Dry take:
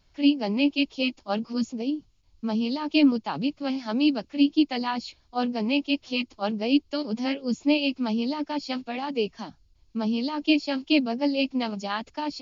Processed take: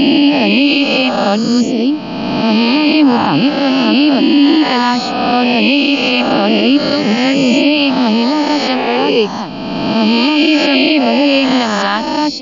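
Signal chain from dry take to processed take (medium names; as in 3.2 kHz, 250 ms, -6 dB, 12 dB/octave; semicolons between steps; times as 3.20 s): reverse spectral sustain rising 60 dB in 2.13 s; loudness maximiser +13.5 dB; trim -1 dB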